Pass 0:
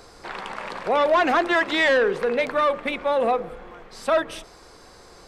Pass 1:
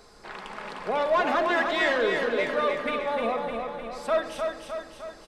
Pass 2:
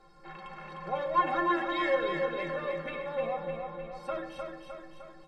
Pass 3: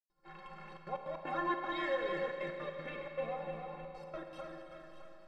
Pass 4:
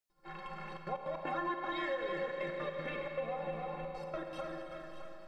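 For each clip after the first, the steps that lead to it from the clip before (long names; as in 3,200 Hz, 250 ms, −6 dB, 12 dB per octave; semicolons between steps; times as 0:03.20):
repeating echo 305 ms, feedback 56%, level −5 dB; on a send at −6.5 dB: convolution reverb RT60 0.90 s, pre-delay 5 ms; on the sum: level −6.5 dB
bass and treble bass +4 dB, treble −13 dB; stiff-string resonator 160 Hz, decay 0.28 s, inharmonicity 0.03; level +6.5 dB
downward expander −46 dBFS; gate pattern ".xxxxxxx.x.x.xxx" 156 BPM; four-comb reverb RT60 3.5 s, combs from 33 ms, DRR 4.5 dB; level −7 dB
downward compressor 3 to 1, threshold −41 dBFS, peak gain reduction 9 dB; level +5.5 dB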